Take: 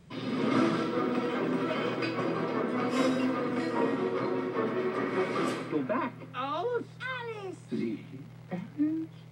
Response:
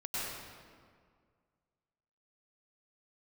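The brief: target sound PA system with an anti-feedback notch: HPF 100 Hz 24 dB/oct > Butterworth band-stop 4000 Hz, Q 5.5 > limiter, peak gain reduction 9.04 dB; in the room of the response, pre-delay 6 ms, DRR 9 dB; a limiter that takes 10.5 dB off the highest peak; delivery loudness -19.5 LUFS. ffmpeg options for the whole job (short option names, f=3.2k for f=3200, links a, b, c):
-filter_complex "[0:a]alimiter=level_in=0.5dB:limit=-24dB:level=0:latency=1,volume=-0.5dB,asplit=2[a][b];[1:a]atrim=start_sample=2205,adelay=6[c];[b][c]afir=irnorm=-1:irlink=0,volume=-13.5dB[d];[a][d]amix=inputs=2:normalize=0,highpass=f=100:w=0.5412,highpass=f=100:w=1.3066,asuperstop=centerf=4000:order=8:qfactor=5.5,volume=19dB,alimiter=limit=-11dB:level=0:latency=1"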